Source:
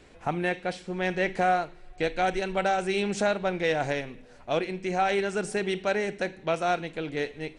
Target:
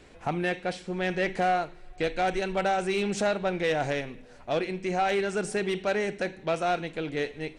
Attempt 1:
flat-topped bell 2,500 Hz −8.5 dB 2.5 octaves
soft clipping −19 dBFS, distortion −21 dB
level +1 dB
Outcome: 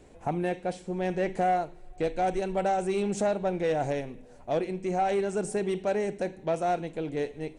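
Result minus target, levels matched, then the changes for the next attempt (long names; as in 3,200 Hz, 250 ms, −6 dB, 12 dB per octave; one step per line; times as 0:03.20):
2,000 Hz band −7.0 dB
remove: flat-topped bell 2,500 Hz −8.5 dB 2.5 octaves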